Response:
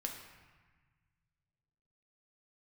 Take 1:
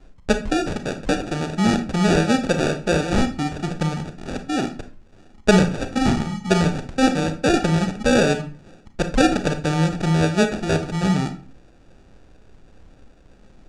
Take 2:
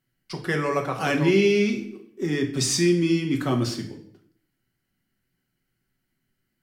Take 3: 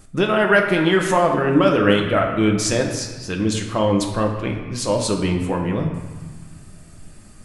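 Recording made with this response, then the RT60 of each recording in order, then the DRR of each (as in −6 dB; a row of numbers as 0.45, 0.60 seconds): 3; 0.40, 0.60, 1.4 seconds; 7.5, 2.5, 1.5 decibels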